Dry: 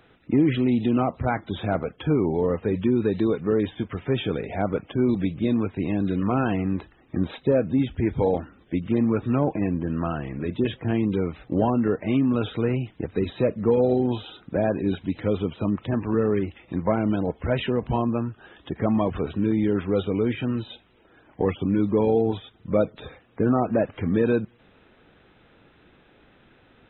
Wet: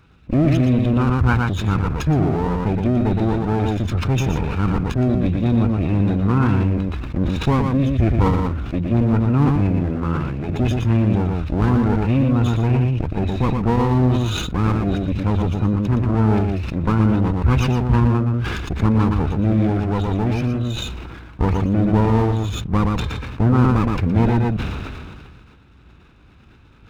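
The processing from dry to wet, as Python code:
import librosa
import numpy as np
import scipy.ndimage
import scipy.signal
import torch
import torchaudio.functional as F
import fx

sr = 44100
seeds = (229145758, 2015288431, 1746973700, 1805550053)

y = fx.lower_of_two(x, sr, delay_ms=0.77)
y = fx.peak_eq(y, sr, hz=61.0, db=14.5, octaves=2.3)
y = y + 10.0 ** (-5.5 / 20.0) * np.pad(y, (int(118 * sr / 1000.0), 0))[:len(y)]
y = fx.sustainer(y, sr, db_per_s=28.0)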